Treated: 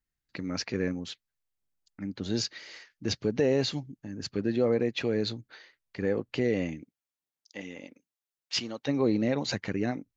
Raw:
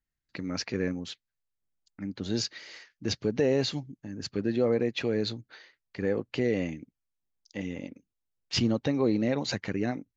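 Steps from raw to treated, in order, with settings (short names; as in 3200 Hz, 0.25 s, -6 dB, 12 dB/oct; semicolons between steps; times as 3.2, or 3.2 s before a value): 6.82–8.87 HPF 310 Hz -> 1200 Hz 6 dB/oct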